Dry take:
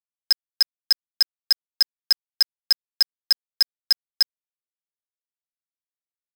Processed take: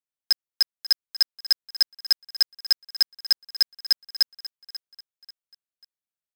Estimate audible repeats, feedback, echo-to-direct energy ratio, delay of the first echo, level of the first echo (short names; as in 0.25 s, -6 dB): 3, 35%, -15.0 dB, 0.54 s, -15.5 dB